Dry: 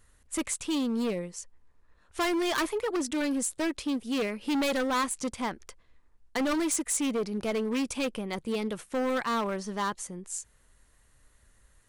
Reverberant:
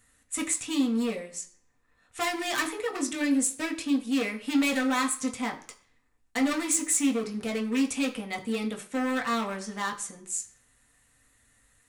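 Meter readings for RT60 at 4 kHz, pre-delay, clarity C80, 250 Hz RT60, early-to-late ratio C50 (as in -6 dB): 0.50 s, 3 ms, 16.5 dB, 0.45 s, 13.5 dB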